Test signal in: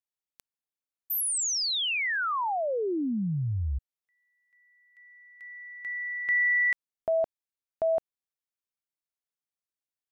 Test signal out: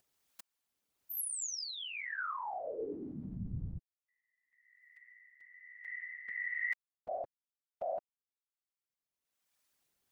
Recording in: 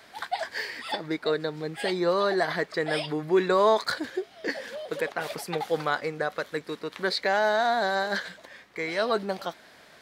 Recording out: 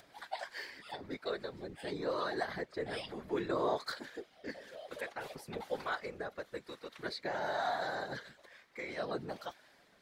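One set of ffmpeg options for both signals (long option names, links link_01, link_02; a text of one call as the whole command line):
ffmpeg -i in.wav -filter_complex "[0:a]acompressor=mode=upward:threshold=-44dB:ratio=2.5:attack=14:release=857:knee=2.83:detection=peak,afftfilt=real='hypot(re,im)*cos(2*PI*random(0))':imag='hypot(re,im)*sin(2*PI*random(1))':win_size=512:overlap=0.75,acrossover=split=570[link_01][link_02];[link_01]aeval=exprs='val(0)*(1-0.5/2+0.5/2*cos(2*PI*1.1*n/s))':channel_layout=same[link_03];[link_02]aeval=exprs='val(0)*(1-0.5/2-0.5/2*cos(2*PI*1.1*n/s))':channel_layout=same[link_04];[link_03][link_04]amix=inputs=2:normalize=0,volume=-3.5dB" out.wav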